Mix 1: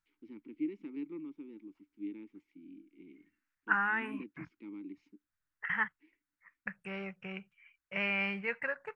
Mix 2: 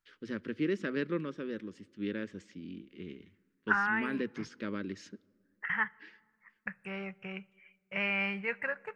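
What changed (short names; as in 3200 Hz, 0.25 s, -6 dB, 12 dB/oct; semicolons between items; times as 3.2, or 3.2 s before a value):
first voice: remove vowel filter u; reverb: on, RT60 2.0 s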